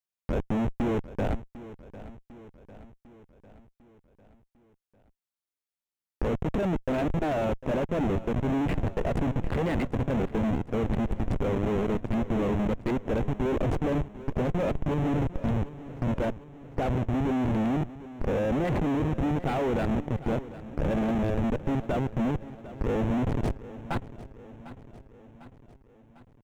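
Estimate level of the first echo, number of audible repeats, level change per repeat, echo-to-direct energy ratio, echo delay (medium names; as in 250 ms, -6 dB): -16.0 dB, 4, -5.0 dB, -14.5 dB, 750 ms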